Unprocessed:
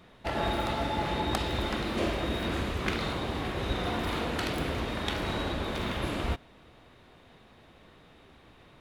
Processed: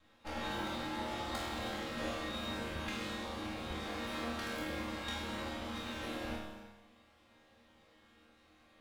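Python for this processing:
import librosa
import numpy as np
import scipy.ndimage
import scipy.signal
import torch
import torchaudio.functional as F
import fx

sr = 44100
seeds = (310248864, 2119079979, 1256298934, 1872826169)

y = fx.lower_of_two(x, sr, delay_ms=3.7)
y = fx.resonator_bank(y, sr, root=39, chord='sus4', decay_s=0.84)
y = fx.rev_gated(y, sr, seeds[0], gate_ms=360, shape='flat', drr_db=10.0)
y = y * 10.0 ** (9.5 / 20.0)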